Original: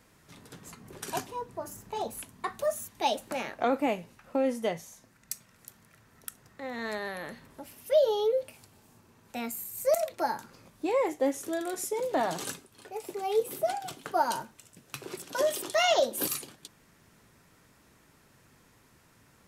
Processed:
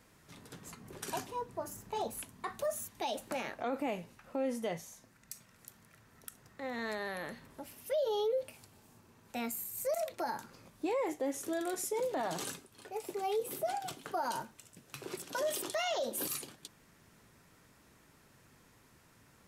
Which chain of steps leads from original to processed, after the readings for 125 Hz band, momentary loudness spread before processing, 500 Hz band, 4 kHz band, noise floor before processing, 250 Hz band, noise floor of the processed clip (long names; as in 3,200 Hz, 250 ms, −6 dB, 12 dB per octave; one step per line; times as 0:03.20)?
−3.0 dB, 18 LU, −7.0 dB, −7.0 dB, −62 dBFS, −5.0 dB, −64 dBFS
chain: brickwall limiter −24.5 dBFS, peak gain reduction 10 dB
level −2 dB